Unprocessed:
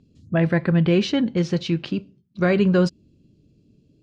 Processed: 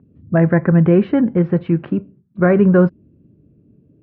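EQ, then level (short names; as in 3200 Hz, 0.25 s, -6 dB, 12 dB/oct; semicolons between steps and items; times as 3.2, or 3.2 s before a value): HPF 55 Hz; LPF 1700 Hz 24 dB/oct; +6.0 dB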